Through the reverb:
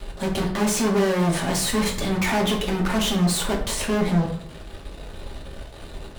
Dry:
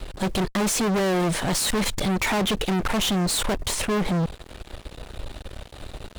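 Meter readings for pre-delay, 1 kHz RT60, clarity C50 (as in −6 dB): 3 ms, 0.60 s, 7.5 dB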